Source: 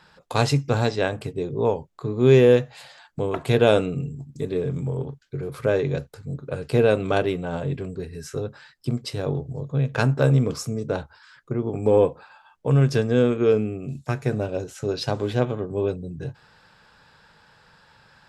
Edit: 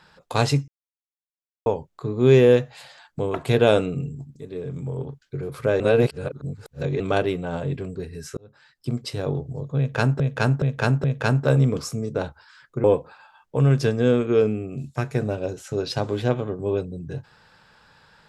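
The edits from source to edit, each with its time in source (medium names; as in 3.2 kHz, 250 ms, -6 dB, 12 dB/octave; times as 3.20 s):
0.68–1.66 s: mute
4.36–5.20 s: fade in linear, from -12 dB
5.80–7.00 s: reverse
8.37–8.99 s: fade in
9.78–10.20 s: loop, 4 plays
11.58–11.95 s: delete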